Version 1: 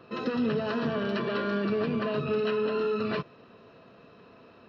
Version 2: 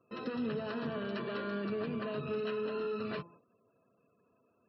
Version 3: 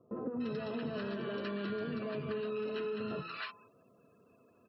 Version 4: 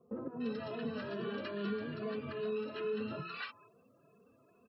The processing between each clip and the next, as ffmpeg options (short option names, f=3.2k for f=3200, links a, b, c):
-af "bandreject=f=170.6:t=h:w=4,bandreject=f=341.2:t=h:w=4,bandreject=f=511.8:t=h:w=4,bandreject=f=682.4:t=h:w=4,bandreject=f=853:t=h:w=4,bandreject=f=1.0236k:t=h:w=4,afftfilt=real='re*gte(hypot(re,im),0.00282)':imag='im*gte(hypot(re,im),0.00282)':win_size=1024:overlap=0.75,agate=range=-10dB:threshold=-49dB:ratio=16:detection=peak,volume=-8dB"
-filter_complex "[0:a]acrossover=split=1000[a][b];[b]adelay=290[c];[a][c]amix=inputs=2:normalize=0,acompressor=threshold=-45dB:ratio=3,volume=7.5dB"
-filter_complex "[0:a]asplit=2[a][b];[b]adelay=2.3,afreqshift=2.4[c];[a][c]amix=inputs=2:normalize=1,volume=2dB"